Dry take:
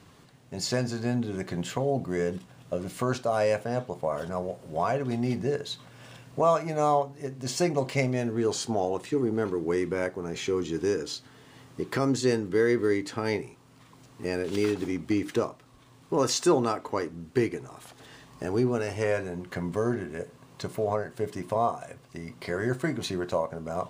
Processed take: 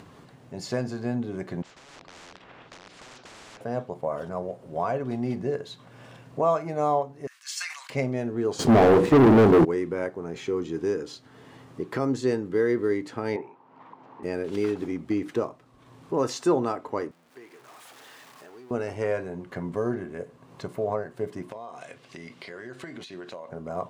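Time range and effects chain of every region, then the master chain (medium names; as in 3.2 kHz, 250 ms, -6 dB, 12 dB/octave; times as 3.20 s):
1.62–3.61 s: integer overflow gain 27.5 dB + tape spacing loss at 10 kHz 39 dB + spectrum-flattening compressor 10:1
7.27–7.90 s: steep high-pass 1.3 kHz + treble shelf 2.2 kHz +7.5 dB + decay stretcher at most 70 dB/s
8.59–9.65 s: tilt shelf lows +9 dB, about 720 Hz + hum notches 60/120/180/240/300/360/420/480 Hz + waveshaping leveller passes 5
13.36–14.23 s: band-pass 250–2300 Hz + peaking EQ 900 Hz +12 dB 0.46 oct
17.11–18.71 s: jump at every zero crossing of -30.5 dBFS + low-pass 1.2 kHz 6 dB/octave + differentiator
21.51–23.49 s: frequency weighting D + compression 12:1, threshold -34 dBFS
whole clip: treble shelf 2.3 kHz -10.5 dB; upward compressor, threshold -41 dBFS; bass shelf 110 Hz -7.5 dB; trim +1 dB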